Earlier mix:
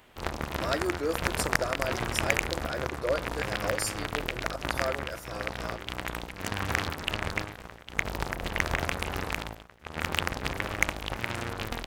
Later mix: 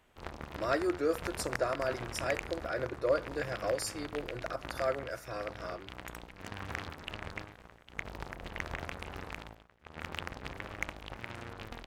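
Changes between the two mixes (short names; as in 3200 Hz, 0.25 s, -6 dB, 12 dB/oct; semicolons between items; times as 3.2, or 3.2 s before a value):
background -10.0 dB; master: add high shelf 6000 Hz -9 dB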